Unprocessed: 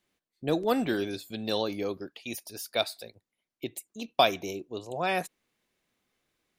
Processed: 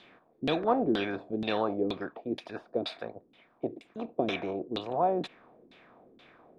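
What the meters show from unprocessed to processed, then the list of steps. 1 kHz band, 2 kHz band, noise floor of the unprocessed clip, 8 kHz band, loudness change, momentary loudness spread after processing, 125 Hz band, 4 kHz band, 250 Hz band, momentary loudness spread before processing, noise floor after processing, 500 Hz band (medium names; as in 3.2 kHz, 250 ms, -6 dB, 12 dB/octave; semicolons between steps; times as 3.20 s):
-1.0 dB, -4.5 dB, under -85 dBFS, under -15 dB, -1.5 dB, 11 LU, -1.0 dB, -6.5 dB, +1.0 dB, 14 LU, -65 dBFS, -0.5 dB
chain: spectral levelling over time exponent 0.6; LFO low-pass saw down 2.1 Hz 260–3800 Hz; trim -5 dB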